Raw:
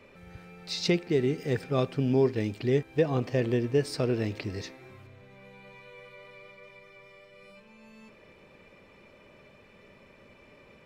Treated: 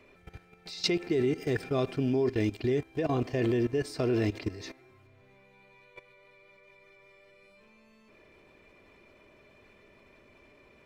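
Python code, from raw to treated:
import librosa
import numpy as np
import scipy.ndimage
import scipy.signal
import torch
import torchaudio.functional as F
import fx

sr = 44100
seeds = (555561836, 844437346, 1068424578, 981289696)

y = fx.level_steps(x, sr, step_db=16)
y = y + 0.41 * np.pad(y, (int(2.9 * sr / 1000.0), 0))[:len(y)]
y = y * 10.0 ** (5.0 / 20.0)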